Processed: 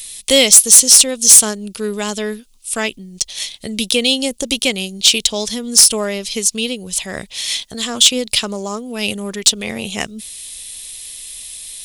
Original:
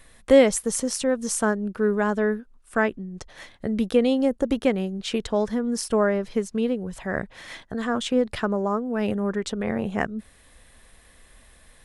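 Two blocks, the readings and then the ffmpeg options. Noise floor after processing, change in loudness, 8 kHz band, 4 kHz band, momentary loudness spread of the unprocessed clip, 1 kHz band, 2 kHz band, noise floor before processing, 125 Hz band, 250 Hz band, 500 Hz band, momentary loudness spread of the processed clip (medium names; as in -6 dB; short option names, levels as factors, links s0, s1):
-48 dBFS, +12.0 dB, +23.0 dB, +22.0 dB, 10 LU, 0.0 dB, +6.5 dB, -55 dBFS, 0.0 dB, 0.0 dB, 0.0 dB, 22 LU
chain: -af "aexciter=amount=7.2:drive=9.9:freq=2500,asoftclip=type=hard:threshold=0.841"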